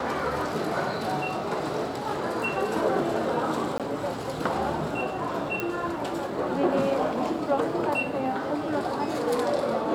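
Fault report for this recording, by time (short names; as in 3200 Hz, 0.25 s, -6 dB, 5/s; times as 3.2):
3.78–3.8 gap 17 ms
5.6 pop -14 dBFS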